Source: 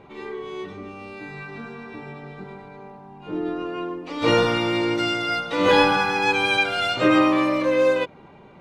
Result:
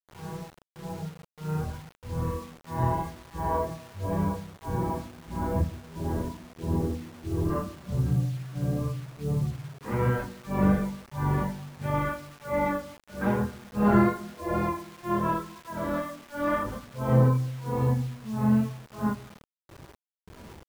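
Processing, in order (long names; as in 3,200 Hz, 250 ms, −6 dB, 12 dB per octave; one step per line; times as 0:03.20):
camcorder AGC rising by 14 dB per second
granular cloud 258 ms, grains 3.7 per second, pitch spread up and down by 0 semitones
feedback echo with a high-pass in the loop 63 ms, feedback 56%, high-pass 650 Hz, level −18 dB
reverb reduction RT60 0.58 s
change of speed 0.416×
on a send at −11 dB: convolution reverb RT60 1.0 s, pre-delay 3 ms
on the sum: flanger 0.89 Hz, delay 0.5 ms, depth 8.8 ms, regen −46%
bit reduction 8 bits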